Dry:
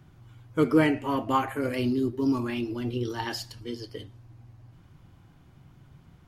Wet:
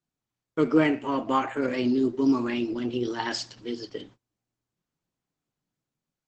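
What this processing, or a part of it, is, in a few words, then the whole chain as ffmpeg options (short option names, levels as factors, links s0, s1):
video call: -af "highpass=f=160:w=0.5412,highpass=f=160:w=1.3066,dynaudnorm=f=550:g=5:m=1.5,agate=range=0.0282:threshold=0.00398:ratio=16:detection=peak" -ar 48000 -c:a libopus -b:a 12k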